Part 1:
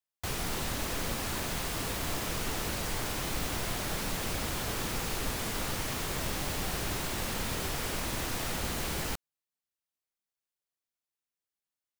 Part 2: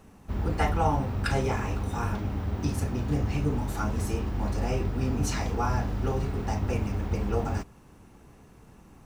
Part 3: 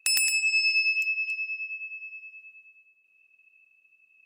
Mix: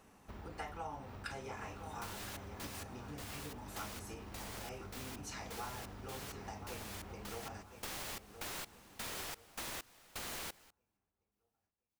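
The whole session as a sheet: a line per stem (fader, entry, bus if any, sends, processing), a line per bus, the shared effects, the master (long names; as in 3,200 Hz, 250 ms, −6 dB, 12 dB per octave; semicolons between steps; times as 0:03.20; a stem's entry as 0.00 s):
−3.0 dB, 1.55 s, bus A, no send, no echo send, gate pattern "x...xxx..x" 129 BPM −24 dB
−4.0 dB, 0.00 s, bus A, no send, echo send −19.5 dB, no processing
muted
bus A: 0.0 dB, downward compressor, threshold −37 dBFS, peak gain reduction 13.5 dB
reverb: not used
echo: repeating echo 1,020 ms, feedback 32%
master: low-shelf EQ 320 Hz −12 dB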